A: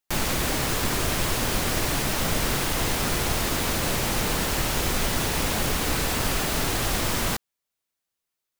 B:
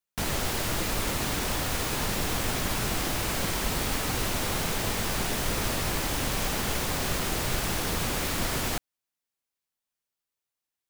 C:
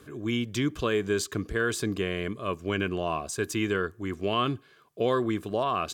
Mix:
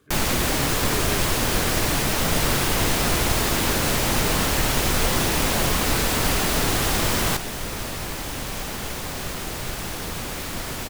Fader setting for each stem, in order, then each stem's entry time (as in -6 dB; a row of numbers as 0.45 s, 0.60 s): +3.0 dB, -1.5 dB, -8.5 dB; 0.00 s, 2.15 s, 0.00 s